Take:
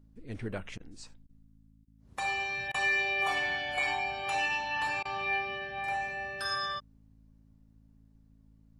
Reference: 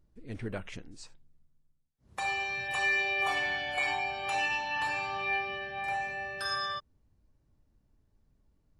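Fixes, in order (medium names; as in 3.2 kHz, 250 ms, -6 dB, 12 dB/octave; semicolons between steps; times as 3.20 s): de-hum 54.1 Hz, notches 5; interpolate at 0.78/1.27/1.85/2.72/5.03 s, 21 ms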